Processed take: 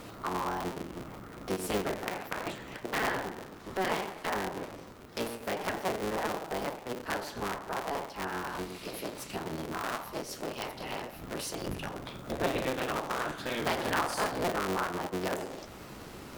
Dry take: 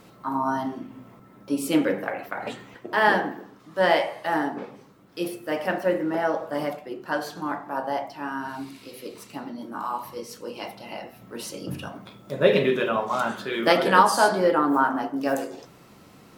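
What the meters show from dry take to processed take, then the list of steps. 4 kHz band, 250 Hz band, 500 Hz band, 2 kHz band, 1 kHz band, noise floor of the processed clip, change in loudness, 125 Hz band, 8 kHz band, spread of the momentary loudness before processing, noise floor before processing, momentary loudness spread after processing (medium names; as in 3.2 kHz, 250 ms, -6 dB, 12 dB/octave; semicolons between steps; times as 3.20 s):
-5.5 dB, -10.0 dB, -9.5 dB, -8.5 dB, -9.5 dB, -47 dBFS, -10.0 dB, -4.0 dB, -3.0 dB, 18 LU, -51 dBFS, 10 LU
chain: cycle switcher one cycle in 3, inverted; compression 2.5:1, threshold -42 dBFS, peak gain reduction 20 dB; trim +5 dB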